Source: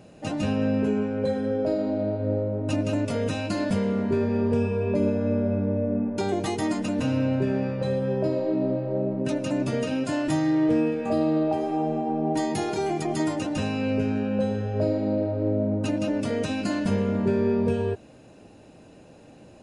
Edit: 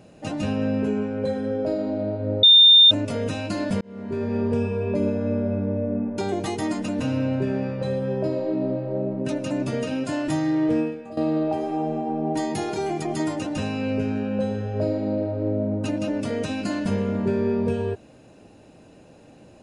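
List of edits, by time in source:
0:02.43–0:02.91: beep over 3,620 Hz −8.5 dBFS
0:03.81–0:04.36: fade in
0:10.80–0:11.17: fade out quadratic, to −14 dB

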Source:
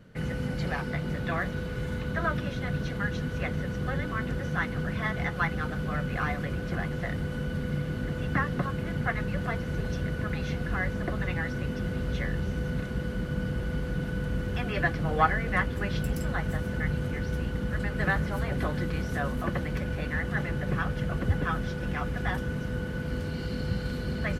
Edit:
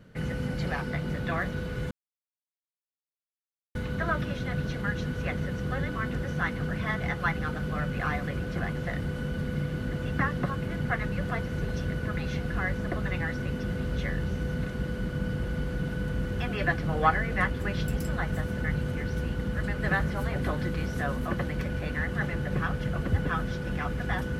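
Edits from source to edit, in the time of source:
0:01.91: splice in silence 1.84 s

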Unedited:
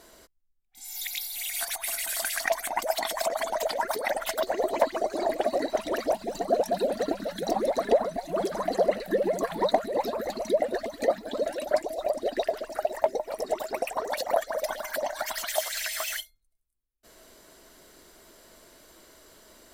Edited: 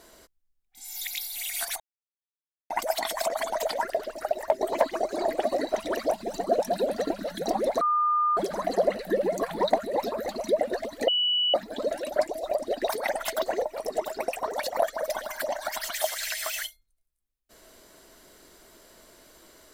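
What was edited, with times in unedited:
0:01.80–0:02.70: silence
0:03.90–0:04.63: swap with 0:12.44–0:13.16
0:07.82–0:08.38: beep over 1,210 Hz −20.5 dBFS
0:11.09: insert tone 2,950 Hz −21.5 dBFS 0.46 s

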